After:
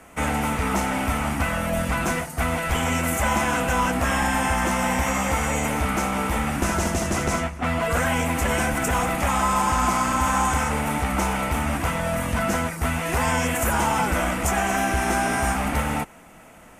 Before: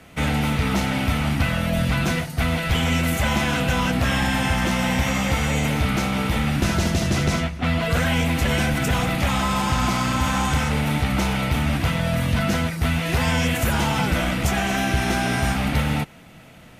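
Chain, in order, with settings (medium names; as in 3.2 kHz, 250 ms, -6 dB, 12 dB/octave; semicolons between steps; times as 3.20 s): graphic EQ 125/1000/4000/8000 Hz -11/+5/-11/+7 dB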